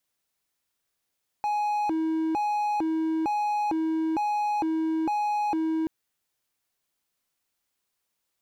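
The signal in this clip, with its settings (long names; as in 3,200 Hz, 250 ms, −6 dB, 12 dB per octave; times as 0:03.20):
siren hi-lo 320–835 Hz 1.1 per second triangle −21.5 dBFS 4.43 s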